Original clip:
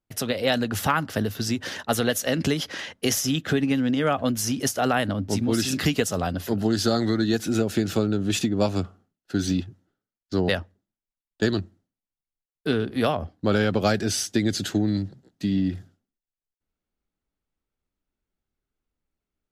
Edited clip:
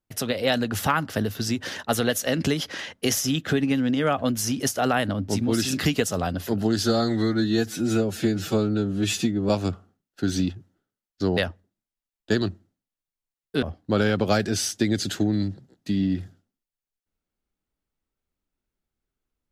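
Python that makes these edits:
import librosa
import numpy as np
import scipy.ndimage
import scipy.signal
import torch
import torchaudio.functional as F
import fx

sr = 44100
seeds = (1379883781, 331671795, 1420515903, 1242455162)

y = fx.edit(x, sr, fx.stretch_span(start_s=6.84, length_s=1.77, factor=1.5),
    fx.cut(start_s=12.74, length_s=0.43), tone=tone)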